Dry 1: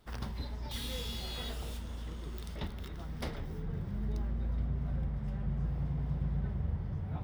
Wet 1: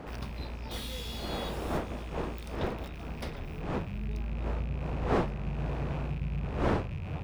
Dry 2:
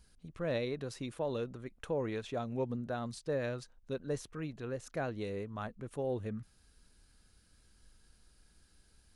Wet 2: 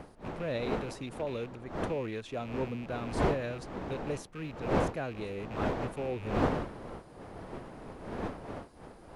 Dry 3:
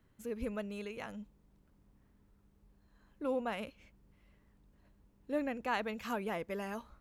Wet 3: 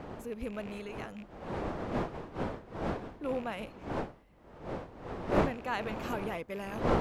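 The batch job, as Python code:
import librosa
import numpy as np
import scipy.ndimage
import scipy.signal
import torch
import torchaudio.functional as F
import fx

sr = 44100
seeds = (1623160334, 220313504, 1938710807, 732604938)

y = fx.rattle_buzz(x, sr, strikes_db=-45.0, level_db=-39.0)
y = fx.dmg_wind(y, sr, seeds[0], corner_hz=640.0, level_db=-37.0)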